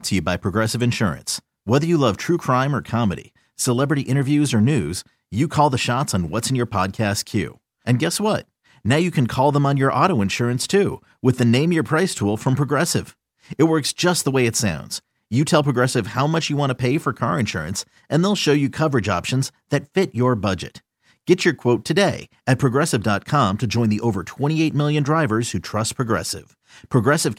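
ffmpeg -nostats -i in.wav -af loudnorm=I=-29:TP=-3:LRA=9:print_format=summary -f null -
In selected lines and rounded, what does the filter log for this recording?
Input Integrated:    -20.2 LUFS
Input True Peak:      -2.2 dBTP
Input LRA:             2.0 LU
Input Threshold:     -30.5 LUFS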